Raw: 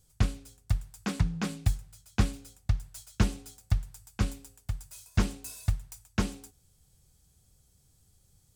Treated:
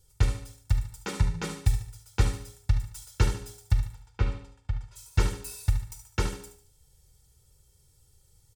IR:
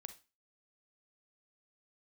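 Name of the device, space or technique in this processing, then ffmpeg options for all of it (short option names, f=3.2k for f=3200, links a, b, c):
microphone above a desk: -filter_complex "[0:a]aecho=1:1:2.2:0.83[a];[1:a]atrim=start_sample=2205[b];[a][b]afir=irnorm=-1:irlink=0,asplit=3[c][d][e];[c]afade=t=out:st=3.93:d=0.02[f];[d]lowpass=3k,afade=t=in:st=3.93:d=0.02,afade=t=out:st=4.95:d=0.02[g];[e]afade=t=in:st=4.95:d=0.02[h];[f][g][h]amix=inputs=3:normalize=0,aecho=1:1:73|146|219|292:0.316|0.126|0.0506|0.0202,volume=5dB"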